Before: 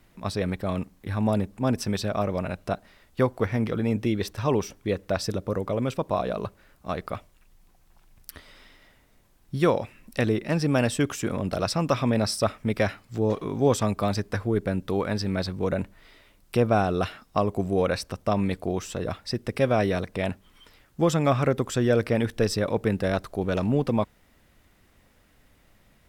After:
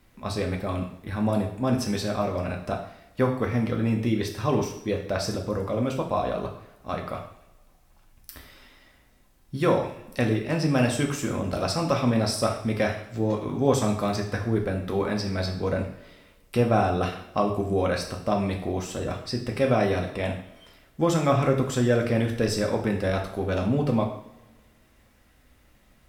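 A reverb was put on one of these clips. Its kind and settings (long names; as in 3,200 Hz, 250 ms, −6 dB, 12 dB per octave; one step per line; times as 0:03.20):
coupled-rooms reverb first 0.57 s, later 1.6 s, DRR 1 dB
level −2 dB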